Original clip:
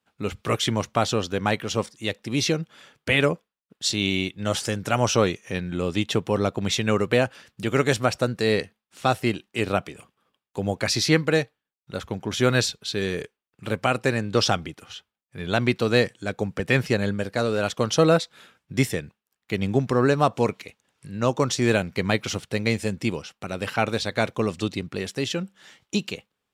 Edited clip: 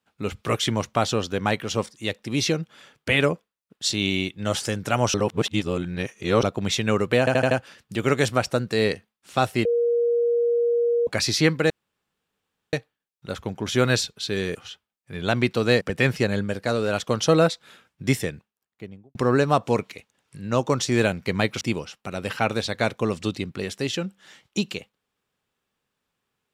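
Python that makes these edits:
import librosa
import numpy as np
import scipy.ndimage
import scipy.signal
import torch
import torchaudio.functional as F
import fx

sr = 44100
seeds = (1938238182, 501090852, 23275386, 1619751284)

y = fx.studio_fade_out(x, sr, start_s=18.98, length_s=0.87)
y = fx.edit(y, sr, fx.reverse_span(start_s=5.14, length_s=1.29),
    fx.stutter(start_s=7.19, slice_s=0.08, count=5),
    fx.bleep(start_s=9.33, length_s=1.42, hz=473.0, db=-18.0),
    fx.insert_room_tone(at_s=11.38, length_s=1.03),
    fx.cut(start_s=13.2, length_s=1.6),
    fx.cut(start_s=16.06, length_s=0.45),
    fx.cut(start_s=22.31, length_s=0.67), tone=tone)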